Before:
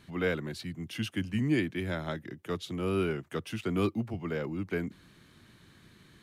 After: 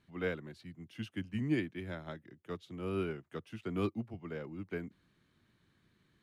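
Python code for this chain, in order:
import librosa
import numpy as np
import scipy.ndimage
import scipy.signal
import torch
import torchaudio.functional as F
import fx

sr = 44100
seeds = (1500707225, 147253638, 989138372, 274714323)

y = fx.high_shelf(x, sr, hz=5000.0, db=-7.0)
y = fx.upward_expand(y, sr, threshold_db=-43.0, expansion=1.5)
y = y * 10.0 ** (-3.5 / 20.0)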